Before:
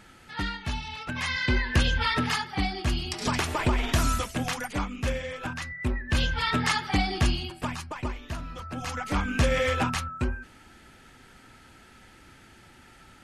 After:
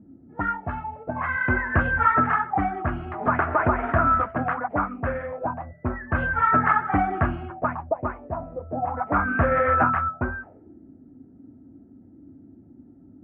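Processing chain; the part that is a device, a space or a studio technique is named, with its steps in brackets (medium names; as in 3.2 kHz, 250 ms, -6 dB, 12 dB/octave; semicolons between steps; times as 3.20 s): envelope filter bass rig (touch-sensitive low-pass 240–1400 Hz up, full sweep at -27 dBFS; cabinet simulation 73–2300 Hz, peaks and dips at 91 Hz +5 dB, 290 Hz +4 dB, 670 Hz +10 dB)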